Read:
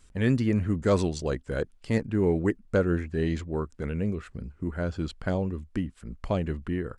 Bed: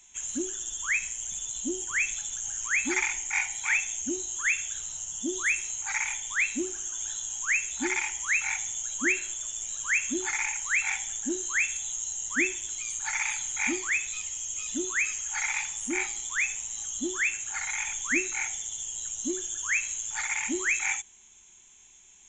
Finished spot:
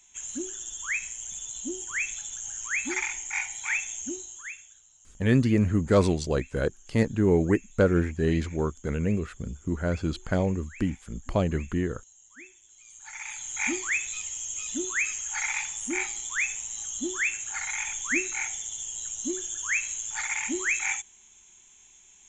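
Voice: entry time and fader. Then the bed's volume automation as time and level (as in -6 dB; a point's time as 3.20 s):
5.05 s, +2.5 dB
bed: 4.08 s -2.5 dB
4.83 s -22 dB
12.66 s -22 dB
13.63 s 0 dB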